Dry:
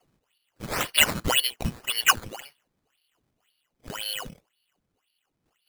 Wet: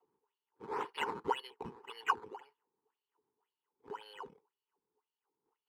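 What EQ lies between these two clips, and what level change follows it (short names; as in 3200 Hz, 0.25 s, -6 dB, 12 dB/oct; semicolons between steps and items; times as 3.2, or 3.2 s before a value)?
double band-pass 620 Hz, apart 1.1 oct; +1.5 dB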